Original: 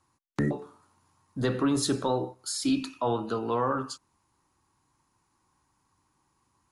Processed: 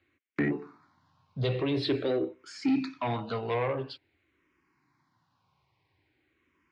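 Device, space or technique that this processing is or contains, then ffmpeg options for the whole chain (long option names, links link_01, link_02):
barber-pole phaser into a guitar amplifier: -filter_complex "[0:a]asplit=2[link_01][link_02];[link_02]afreqshift=-0.48[link_03];[link_01][link_03]amix=inputs=2:normalize=1,asoftclip=type=tanh:threshold=-25dB,highpass=97,equalizer=frequency=210:width_type=q:width=4:gain=-7,equalizer=frequency=520:width_type=q:width=4:gain=-3,equalizer=frequency=880:width_type=q:width=4:gain=-8,equalizer=frequency=1200:width_type=q:width=4:gain=-6,equalizer=frequency=2200:width_type=q:width=4:gain=8,lowpass=frequency=4000:width=0.5412,lowpass=frequency=4000:width=1.3066,volume=6dB"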